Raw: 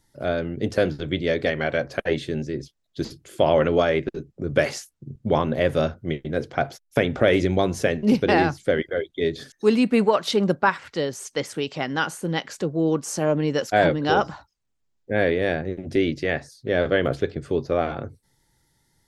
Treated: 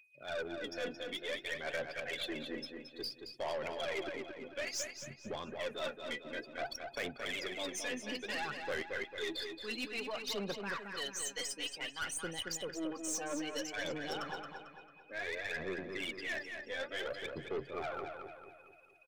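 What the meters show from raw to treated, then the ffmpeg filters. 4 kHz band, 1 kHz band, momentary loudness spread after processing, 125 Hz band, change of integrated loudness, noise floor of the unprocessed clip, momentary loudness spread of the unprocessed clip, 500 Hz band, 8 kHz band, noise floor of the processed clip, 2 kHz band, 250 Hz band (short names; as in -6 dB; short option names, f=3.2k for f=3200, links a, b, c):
-7.5 dB, -18.0 dB, 6 LU, -26.0 dB, -16.5 dB, -71 dBFS, 10 LU, -19.0 dB, -4.0 dB, -59 dBFS, -11.5 dB, -21.0 dB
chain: -filter_complex "[0:a]highpass=100,afftdn=nr=36:nf=-35,aderivative,areverse,acompressor=threshold=-50dB:ratio=6,areverse,aeval=exprs='val(0)+0.000141*sin(2*PI*2500*n/s)':c=same,aphaser=in_gain=1:out_gain=1:delay=4.1:decay=0.69:speed=0.57:type=sinusoidal,asoftclip=type=tanh:threshold=-38dB,aeval=exprs='0.0126*(cos(1*acos(clip(val(0)/0.0126,-1,1)))-cos(1*PI/2))+0.000158*(cos(3*acos(clip(val(0)/0.0126,-1,1)))-cos(3*PI/2))+0.00158*(cos(5*acos(clip(val(0)/0.0126,-1,1)))-cos(5*PI/2))+0.000708*(cos(6*acos(clip(val(0)/0.0126,-1,1)))-cos(6*PI/2))':c=same,asplit=2[a][b];[b]adelay=223,lowpass=f=4.5k:p=1,volume=-5.5dB,asplit=2[c][d];[d]adelay=223,lowpass=f=4.5k:p=1,volume=0.48,asplit=2[e][f];[f]adelay=223,lowpass=f=4.5k:p=1,volume=0.48,asplit=2[g][h];[h]adelay=223,lowpass=f=4.5k:p=1,volume=0.48,asplit=2[i][j];[j]adelay=223,lowpass=f=4.5k:p=1,volume=0.48,asplit=2[k][l];[l]adelay=223,lowpass=f=4.5k:p=1,volume=0.48[m];[c][e][g][i][k][m]amix=inputs=6:normalize=0[n];[a][n]amix=inputs=2:normalize=0,volume=8.5dB"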